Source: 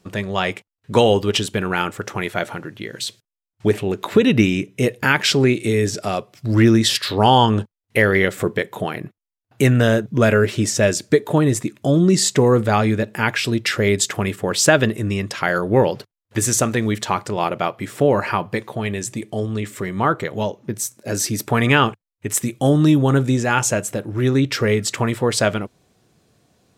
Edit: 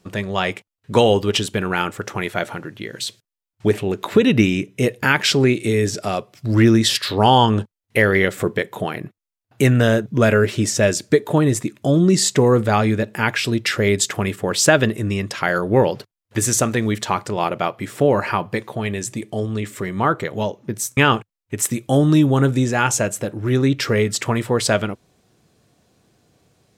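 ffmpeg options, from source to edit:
ffmpeg -i in.wav -filter_complex "[0:a]asplit=2[link_01][link_02];[link_01]atrim=end=20.972[link_03];[link_02]atrim=start=21.688[link_04];[link_03][link_04]acrossfade=duration=0.004:curve1=hsin:curve2=hsin" out.wav

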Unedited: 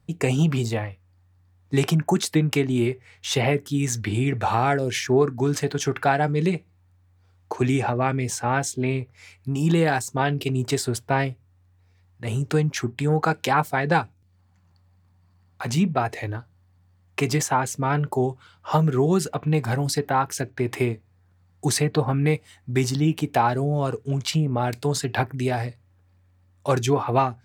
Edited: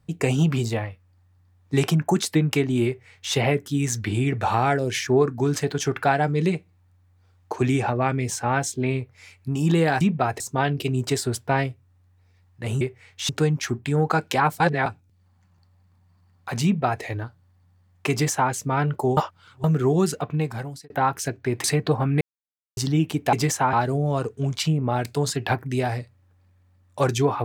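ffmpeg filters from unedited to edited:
ffmpeg -i in.wav -filter_complex "[0:a]asplit=15[link_01][link_02][link_03][link_04][link_05][link_06][link_07][link_08][link_09][link_10][link_11][link_12][link_13][link_14][link_15];[link_01]atrim=end=10.012[link_16];[link_02]atrim=start=15.768:end=16.162[link_17];[link_03]atrim=start=10.008:end=12.422[link_18];[link_04]atrim=start=2.858:end=3.342[link_19];[link_05]atrim=start=12.418:end=13.732[link_20];[link_06]atrim=start=13.728:end=13.992,asetpts=PTS-STARTPTS,areverse[link_21];[link_07]atrim=start=13.988:end=18.302[link_22];[link_08]atrim=start=18.298:end=18.772,asetpts=PTS-STARTPTS,areverse[link_23];[link_09]atrim=start=18.768:end=20.03,asetpts=PTS-STARTPTS,afade=type=out:start_time=0.562:duration=0.7[link_24];[link_10]atrim=start=20.03:end=20.772,asetpts=PTS-STARTPTS,afade=type=in:duration=0.004:curve=hsin[link_25];[link_11]atrim=start=21.718:end=22.29,asetpts=PTS-STARTPTS,afade=type=out:start_time=0.568:duration=0.004:curve=hsin[link_26];[link_12]atrim=start=22.29:end=22.85,asetpts=PTS-STARTPTS,volume=0[link_27];[link_13]atrim=start=22.85:end=23.412,asetpts=PTS-STARTPTS,afade=type=in:duration=0.004:curve=hsin[link_28];[link_14]atrim=start=17.238:end=17.642[link_29];[link_15]atrim=start=23.408[link_30];[link_16][link_17]acrossfade=duration=0.004:curve1=hsin:curve2=hsin[link_31];[link_31][link_18]acrossfade=duration=0.004:curve1=hsin:curve2=hsin[link_32];[link_32][link_19]acrossfade=duration=0.004:curve1=hsin:curve2=hsin[link_33];[link_33][link_20]acrossfade=duration=0.004:curve1=hsin:curve2=hsin[link_34];[link_34][link_21]acrossfade=duration=0.004:curve1=hsin:curve2=hsin[link_35];[link_35][link_22]acrossfade=duration=0.004:curve1=hsin:curve2=hsin[link_36];[link_36][link_23]acrossfade=duration=0.004:curve1=hsin:curve2=hsin[link_37];[link_24][link_25]concat=n=2:v=0:a=1[link_38];[link_37][link_38]acrossfade=duration=0.004:curve1=hsin:curve2=hsin[link_39];[link_26][link_27][link_28]concat=n=3:v=0:a=1[link_40];[link_39][link_40]acrossfade=duration=0.004:curve1=hsin:curve2=hsin[link_41];[link_41][link_29]acrossfade=duration=0.004:curve1=hsin:curve2=hsin[link_42];[link_42][link_30]acrossfade=duration=0.004:curve1=hsin:curve2=hsin" out.wav

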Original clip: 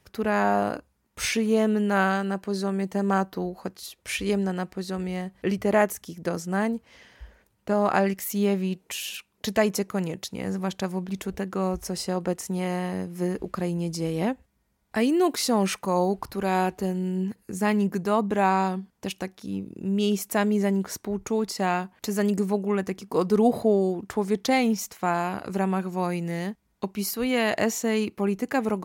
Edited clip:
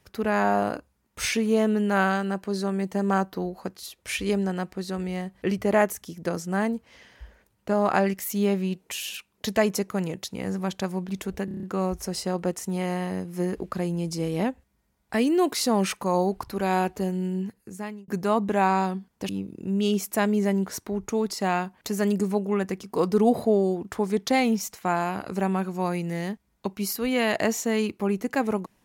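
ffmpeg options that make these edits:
ffmpeg -i in.wav -filter_complex "[0:a]asplit=9[link_01][link_02][link_03][link_04][link_05][link_06][link_07][link_08][link_09];[link_01]atrim=end=11.482[link_10];[link_02]atrim=start=11.448:end=11.482[link_11];[link_03]atrim=start=11.448:end=11.482[link_12];[link_04]atrim=start=11.448:end=11.482[link_13];[link_05]atrim=start=11.448:end=11.482[link_14];[link_06]atrim=start=11.448:end=11.482[link_15];[link_07]atrim=start=11.448:end=17.9,asetpts=PTS-STARTPTS,afade=type=out:start_time=5.632:duration=0.82[link_16];[link_08]atrim=start=17.9:end=19.112,asetpts=PTS-STARTPTS,afade=type=in:duration=0.004:curve=hsin[link_17];[link_09]atrim=start=19.468[link_18];[link_10][link_11]acrossfade=duration=0.004:curve1=hsin:curve2=hsin[link_19];[link_19][link_12]acrossfade=duration=0.004:curve1=hsin:curve2=hsin[link_20];[link_20][link_13]acrossfade=duration=0.004:curve1=hsin:curve2=hsin[link_21];[link_21][link_14]acrossfade=duration=0.004:curve1=hsin:curve2=hsin[link_22];[link_22][link_15]acrossfade=duration=0.004:curve1=hsin:curve2=hsin[link_23];[link_16][link_17]concat=n=2:v=0:a=1[link_24];[link_23][link_24]acrossfade=duration=0.004:curve1=hsin:curve2=hsin[link_25];[link_25][link_18]acrossfade=duration=0.004:curve1=hsin:curve2=hsin" out.wav

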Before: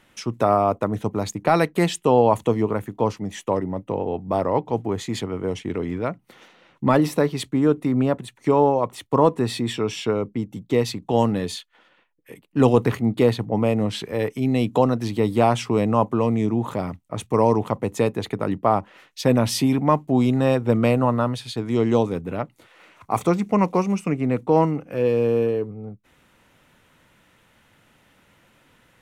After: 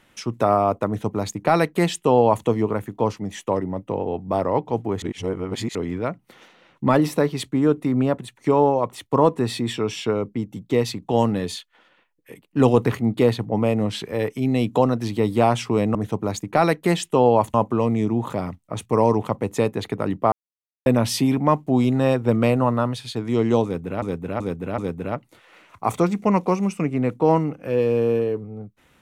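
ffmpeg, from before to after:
ffmpeg -i in.wav -filter_complex "[0:a]asplit=10[link_01][link_02][link_03][link_04][link_05][link_06][link_07][link_08][link_09][link_10];[link_01]atrim=end=5.022[link_11];[link_02]atrim=start=5.018:end=5.752,asetpts=PTS-STARTPTS,areverse[link_12];[link_03]atrim=start=5.748:end=15.952[link_13];[link_04]atrim=start=0.868:end=2.462[link_14];[link_05]atrim=start=15.948:end=18.73,asetpts=PTS-STARTPTS,afade=type=out:start_time=2.778:duration=0.004:curve=hsin[link_15];[link_06]atrim=start=18.73:end=19.27,asetpts=PTS-STARTPTS,volume=0[link_16];[link_07]atrim=start=19.27:end=22.432,asetpts=PTS-STARTPTS,afade=type=in:duration=0.004:curve=hsin[link_17];[link_08]atrim=start=22.048:end=22.432[link_18];[link_09]atrim=start=22.048:end=22.432[link_19];[link_10]atrim=start=22.048[link_20];[link_11][link_12]acrossfade=duration=0.004:curve1=hsin:curve2=hsin[link_21];[link_21][link_13]acrossfade=duration=0.004:curve1=hsin:curve2=hsin[link_22];[link_22][link_14]acrossfade=duration=0.004:curve1=hsin:curve2=hsin[link_23];[link_15][link_16][link_17]concat=n=3:v=0:a=1[link_24];[link_23][link_24]acrossfade=duration=0.004:curve1=hsin:curve2=hsin[link_25];[link_25][link_18]acrossfade=duration=0.004:curve1=hsin:curve2=hsin[link_26];[link_26][link_19]acrossfade=duration=0.004:curve1=hsin:curve2=hsin[link_27];[link_27][link_20]acrossfade=duration=0.004:curve1=hsin:curve2=hsin" out.wav

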